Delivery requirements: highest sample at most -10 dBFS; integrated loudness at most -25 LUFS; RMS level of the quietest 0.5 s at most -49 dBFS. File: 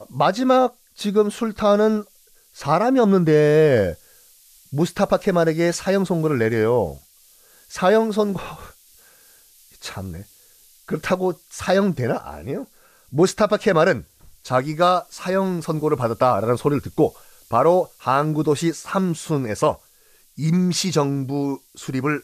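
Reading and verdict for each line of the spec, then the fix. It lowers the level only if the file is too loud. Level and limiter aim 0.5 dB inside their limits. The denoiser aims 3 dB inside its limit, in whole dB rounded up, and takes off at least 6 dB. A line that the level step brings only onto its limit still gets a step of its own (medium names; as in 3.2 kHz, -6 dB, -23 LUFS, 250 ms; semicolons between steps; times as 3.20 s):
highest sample -6.0 dBFS: fail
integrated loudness -20.5 LUFS: fail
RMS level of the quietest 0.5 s -55 dBFS: pass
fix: trim -5 dB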